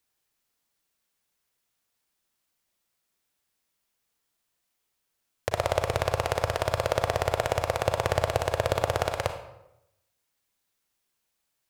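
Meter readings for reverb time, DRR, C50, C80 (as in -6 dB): 0.85 s, 6.5 dB, 8.0 dB, 11.0 dB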